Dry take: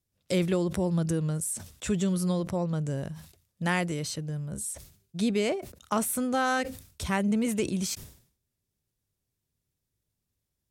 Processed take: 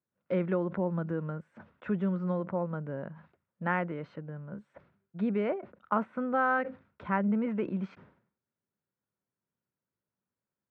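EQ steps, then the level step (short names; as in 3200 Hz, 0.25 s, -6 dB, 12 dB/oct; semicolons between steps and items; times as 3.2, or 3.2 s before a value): speaker cabinet 180–2100 Hz, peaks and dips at 200 Hz +5 dB, 540 Hz +4 dB, 960 Hz +6 dB, 1400 Hz +8 dB; -4.5 dB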